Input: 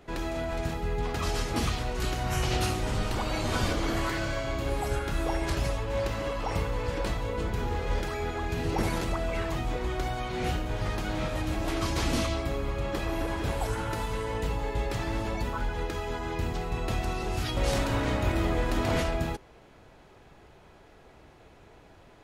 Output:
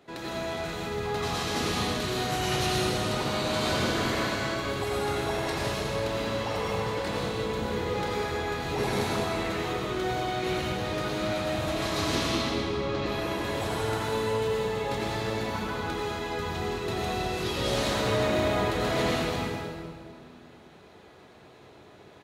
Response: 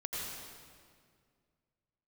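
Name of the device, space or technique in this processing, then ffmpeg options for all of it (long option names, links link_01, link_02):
PA in a hall: -filter_complex "[0:a]asettb=1/sr,asplit=3[link_01][link_02][link_03];[link_01]atrim=end=12.154[link_04];[link_02]atrim=start=12.15:end=13.06,asetpts=PTS-STARTPTS,afade=type=in:duration=0.004:curve=qsin,afade=type=out:start_time=0.906:duration=0.004:curve=qsin,lowpass=frequency=5900:width=0.5412,lowpass=frequency=5900:width=1.3066[link_05];[link_03]atrim=start=13.056[link_06];[link_04][link_05]acrossfade=duration=0.004:curve1=hsin:curve2=qsin[link_07];[link_07][link_06]acrossfade=duration=0.004:curve1=qsin:curve2=hsin,highpass=140,equalizer=frequency=3900:width_type=o:width=0.3:gain=6,aecho=1:1:198:0.316[link_08];[1:a]atrim=start_sample=2205[link_09];[link_08][link_09]afir=irnorm=-1:irlink=0"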